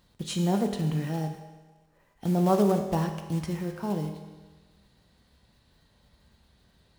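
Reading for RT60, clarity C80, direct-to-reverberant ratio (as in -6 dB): 1.3 s, 8.5 dB, 4.5 dB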